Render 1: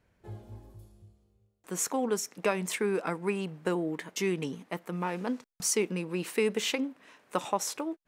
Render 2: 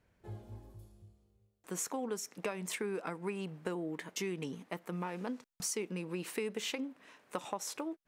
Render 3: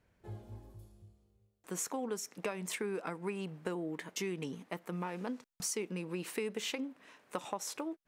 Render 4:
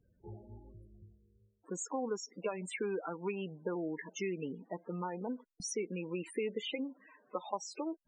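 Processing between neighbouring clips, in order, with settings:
downward compressor 3 to 1, threshold −33 dBFS, peak gain reduction 9 dB; level −2.5 dB
no processing that can be heard
dynamic equaliser 100 Hz, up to −7 dB, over −56 dBFS, Q 0.71; spectral peaks only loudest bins 16; level +2.5 dB

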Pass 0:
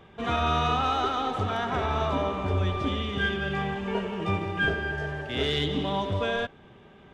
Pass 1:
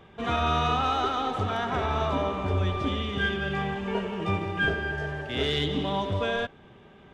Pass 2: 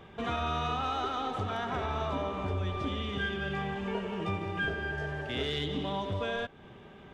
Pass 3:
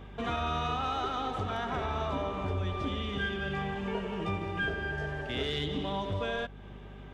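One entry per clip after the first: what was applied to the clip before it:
no processing that can be heard
downward compressor 2 to 1, threshold −36 dBFS, peak gain reduction 8.5 dB; level +1 dB
mains hum 50 Hz, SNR 14 dB

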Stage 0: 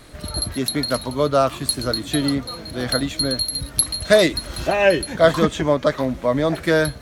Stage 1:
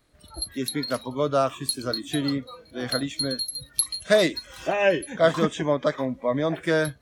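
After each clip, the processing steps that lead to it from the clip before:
noise reduction from a noise print of the clip's start 16 dB
level −5 dB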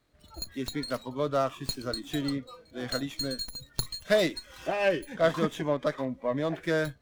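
windowed peak hold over 3 samples
level −5 dB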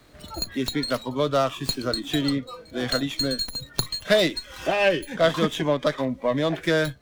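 dynamic equaliser 3,300 Hz, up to +5 dB, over −48 dBFS, Q 1.8
multiband upward and downward compressor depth 40%
level +5.5 dB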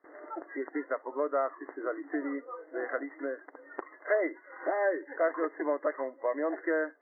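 linear-phase brick-wall band-pass 280–2,100 Hz
noise gate with hold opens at −51 dBFS
multiband upward and downward compressor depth 40%
level −6.5 dB

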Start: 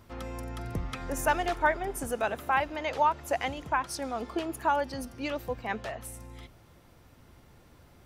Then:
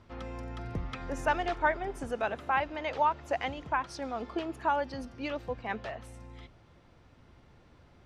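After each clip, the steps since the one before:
low-pass filter 4,700 Hz 12 dB per octave
level −2 dB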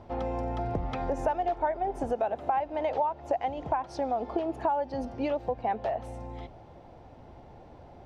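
drawn EQ curve 190 Hz 0 dB, 490 Hz +5 dB, 790 Hz +11 dB, 1,200 Hz −5 dB, 6,200 Hz −7 dB, 9,500 Hz −10 dB
downward compressor 5 to 1, threshold −33 dBFS, peak gain reduction 15 dB
level +6.5 dB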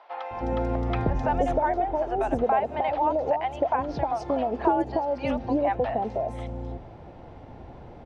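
high-frequency loss of the air 58 metres
three-band delay without the direct sound mids, highs, lows 260/310 ms, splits 720/5,000 Hz
level +7 dB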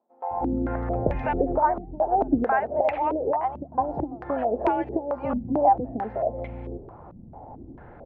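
low-pass on a step sequencer 4.5 Hz 210–2,300 Hz
level −2.5 dB

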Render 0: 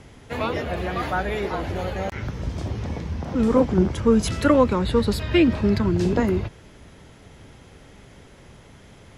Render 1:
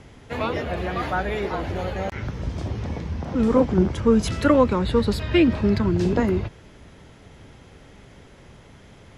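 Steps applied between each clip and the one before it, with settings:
high-shelf EQ 9,500 Hz −8 dB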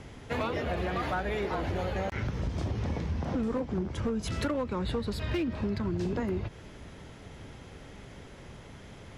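downward compressor 10 to 1, threshold −27 dBFS, peak gain reduction 15.5 dB
hard clipping −24.5 dBFS, distortion −20 dB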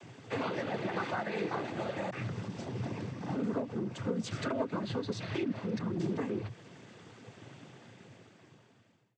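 fade-out on the ending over 1.58 s
cochlear-implant simulation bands 16
level −2.5 dB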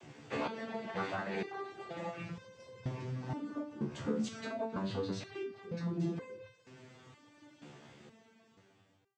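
step-sequenced resonator 2.1 Hz 73–520 Hz
level +7 dB

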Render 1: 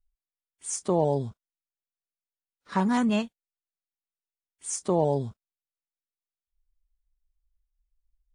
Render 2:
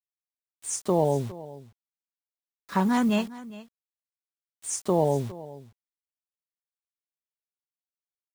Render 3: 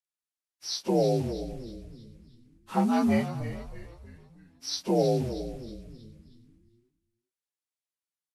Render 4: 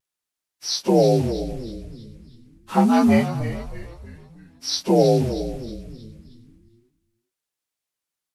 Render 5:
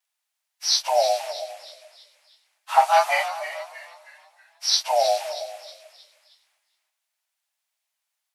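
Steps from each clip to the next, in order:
bit-depth reduction 8 bits, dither none; single-tap delay 409 ms −18 dB; level +1 dB
partials spread apart or drawn together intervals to 87%; echo with shifted repeats 317 ms, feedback 46%, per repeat −100 Hz, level −11 dB
pitch vibrato 0.39 Hz 15 cents; level +8 dB
Chebyshev high-pass with heavy ripple 600 Hz, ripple 3 dB; level +6.5 dB

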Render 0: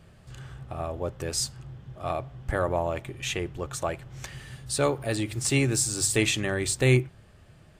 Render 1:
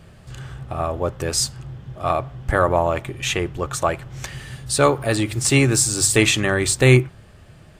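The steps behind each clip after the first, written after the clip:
dynamic equaliser 1,200 Hz, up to +5 dB, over −44 dBFS, Q 1.7
level +7.5 dB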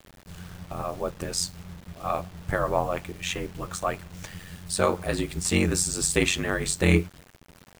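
flanger 0.94 Hz, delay 4.9 ms, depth 4.3 ms, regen −74%
ring modulation 45 Hz
bit reduction 8 bits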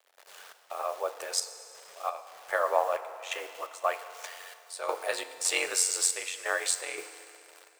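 inverse Chebyshev high-pass filter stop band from 250 Hz, stop band 40 dB
gate pattern ".xx.xxxx." 86 BPM −12 dB
feedback delay network reverb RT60 2.7 s, low-frequency decay 0.75×, high-frequency decay 0.85×, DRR 10.5 dB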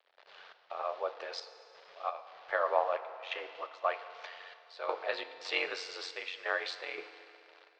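Butterworth low-pass 4,500 Hz 36 dB per octave
level −3 dB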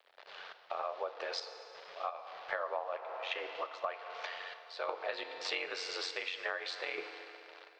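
downward compressor 6 to 1, threshold −39 dBFS, peak gain reduction 16 dB
level +5 dB

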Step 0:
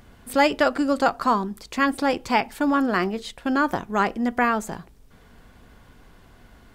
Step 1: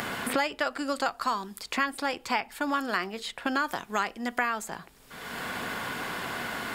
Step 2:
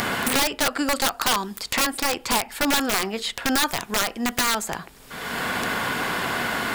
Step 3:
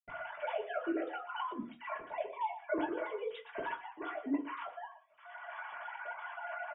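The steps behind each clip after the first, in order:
tilt shelving filter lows −7 dB, about 720 Hz; notch filter 6,000 Hz, Q 14; multiband upward and downward compressor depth 100%; level −8.5 dB
wrap-around overflow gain 22 dB; level +8.5 dB
three sine waves on the formant tracks; single-tap delay 118 ms −14 dB; convolution reverb RT60 0.25 s, pre-delay 76 ms; level +9.5 dB

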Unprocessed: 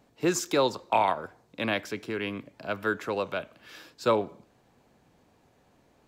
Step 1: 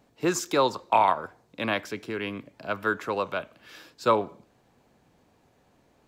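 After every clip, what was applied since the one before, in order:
dynamic equaliser 1,100 Hz, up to +6 dB, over −40 dBFS, Q 1.8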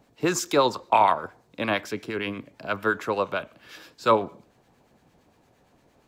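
two-band tremolo in antiphase 8.7 Hz, depth 50%, crossover 1,100 Hz
level +4.5 dB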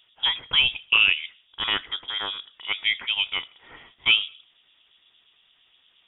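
voice inversion scrambler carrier 3,600 Hz

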